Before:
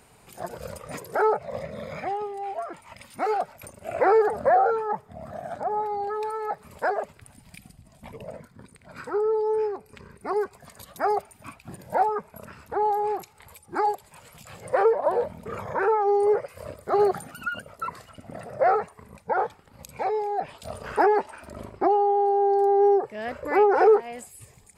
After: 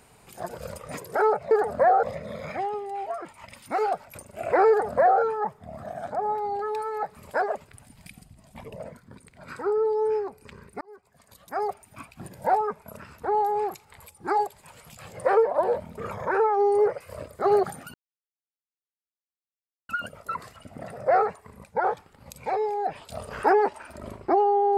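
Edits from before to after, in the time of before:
4.17–4.69 copy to 1.51
10.29–11.6 fade in
17.42 insert silence 1.95 s

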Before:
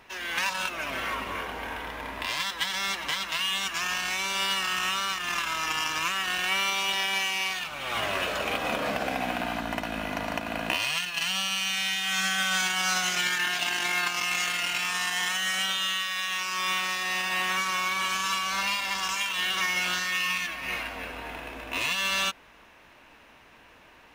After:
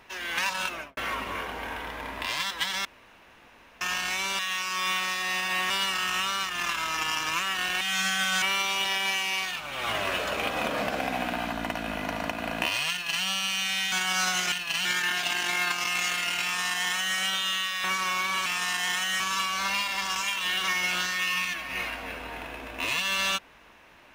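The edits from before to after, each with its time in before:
0.72–0.97 studio fade out
2.85–3.81 room tone
10.99–11.32 copy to 13.21
12–12.61 move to 6.5
14.79–15.53 copy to 18.13
16.2–17.51 move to 4.39

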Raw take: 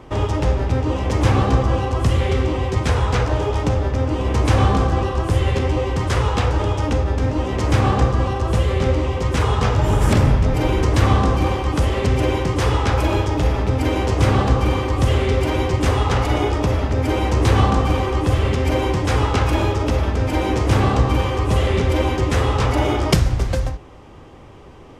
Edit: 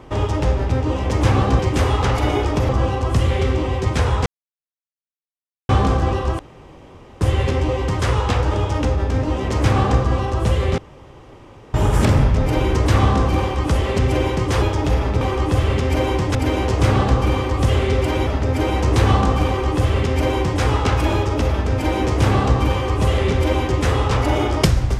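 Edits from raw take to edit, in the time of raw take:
3.16–4.59 mute
5.29 insert room tone 0.82 s
8.86–9.82 room tone
12.7–13.15 cut
15.66–16.76 move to 1.59
17.96–19.1 copy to 13.74

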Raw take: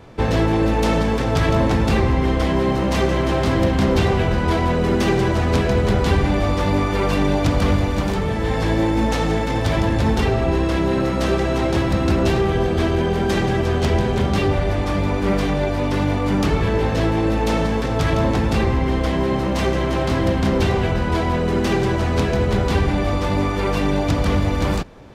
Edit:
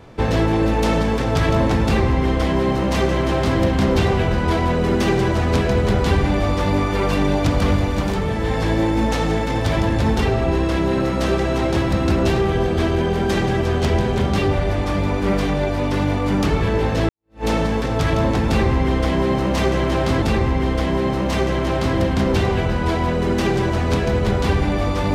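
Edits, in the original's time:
1.85–3.59 copy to 18.48
17.09–17.45 fade in exponential

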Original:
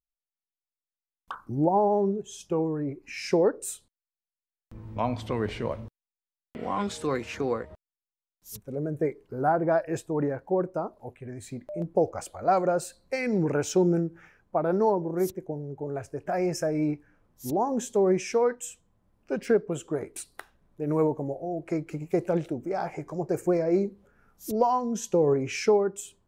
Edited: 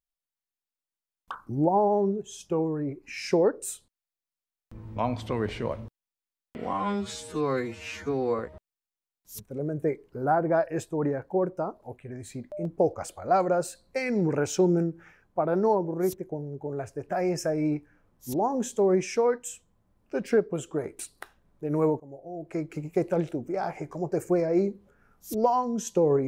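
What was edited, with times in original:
6.73–7.56 stretch 2×
21.17–21.92 fade in linear, from -20 dB

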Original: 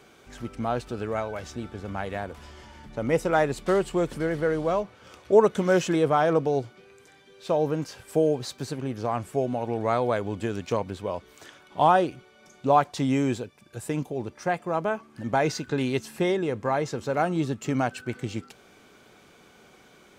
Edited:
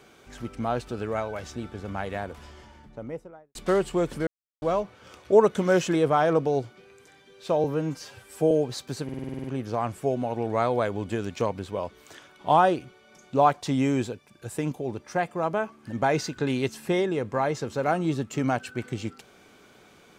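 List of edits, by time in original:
2.31–3.55 studio fade out
4.27–4.62 mute
7.64–8.22 stretch 1.5×
8.75 stutter 0.05 s, 9 plays

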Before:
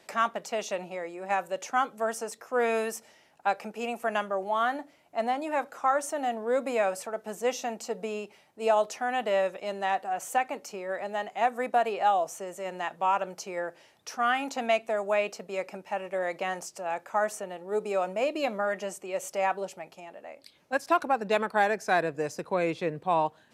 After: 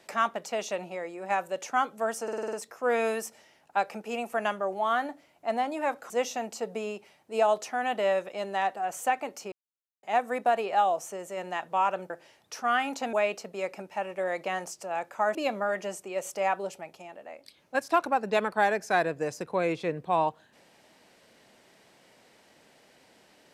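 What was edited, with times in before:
2.23 stutter 0.05 s, 7 plays
5.8–7.38 cut
10.8–11.31 mute
13.38–13.65 cut
14.68–15.08 cut
17.3–18.33 cut

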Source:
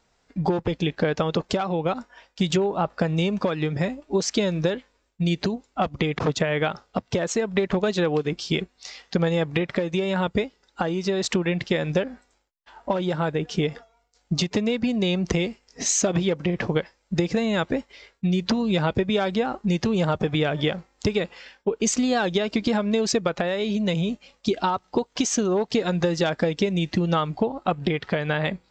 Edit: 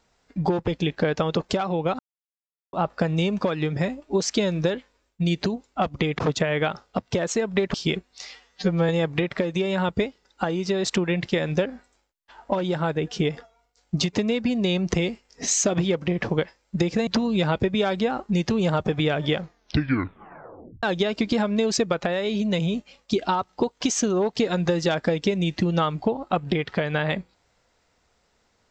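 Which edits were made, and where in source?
1.99–2.73 mute
7.74–8.39 cut
9–9.27 stretch 2×
17.45–18.42 cut
20.73 tape stop 1.45 s

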